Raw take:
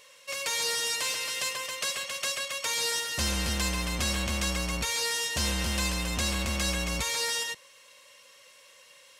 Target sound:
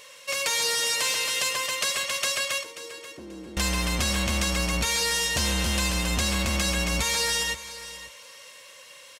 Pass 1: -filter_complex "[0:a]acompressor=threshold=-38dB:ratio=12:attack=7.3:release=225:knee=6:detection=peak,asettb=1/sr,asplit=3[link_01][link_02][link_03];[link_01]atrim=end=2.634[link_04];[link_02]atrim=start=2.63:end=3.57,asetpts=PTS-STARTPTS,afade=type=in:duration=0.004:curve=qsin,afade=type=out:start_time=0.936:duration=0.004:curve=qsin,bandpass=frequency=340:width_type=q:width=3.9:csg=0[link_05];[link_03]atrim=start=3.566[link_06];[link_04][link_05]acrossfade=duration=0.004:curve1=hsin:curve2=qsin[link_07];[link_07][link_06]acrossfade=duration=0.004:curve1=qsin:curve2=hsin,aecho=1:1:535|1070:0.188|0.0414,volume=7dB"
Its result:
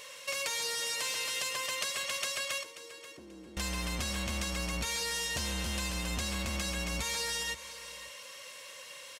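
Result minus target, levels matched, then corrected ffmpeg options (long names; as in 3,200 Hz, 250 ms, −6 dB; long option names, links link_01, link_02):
downward compressor: peak gain reduction +10 dB
-filter_complex "[0:a]acompressor=threshold=-27dB:ratio=12:attack=7.3:release=225:knee=6:detection=peak,asettb=1/sr,asplit=3[link_01][link_02][link_03];[link_01]atrim=end=2.634[link_04];[link_02]atrim=start=2.63:end=3.57,asetpts=PTS-STARTPTS,afade=type=in:duration=0.004:curve=qsin,afade=type=out:start_time=0.936:duration=0.004:curve=qsin,bandpass=frequency=340:width_type=q:width=3.9:csg=0[link_05];[link_03]atrim=start=3.566[link_06];[link_04][link_05]acrossfade=duration=0.004:curve1=hsin:curve2=qsin[link_07];[link_07][link_06]acrossfade=duration=0.004:curve1=qsin:curve2=hsin,aecho=1:1:535|1070:0.188|0.0414,volume=7dB"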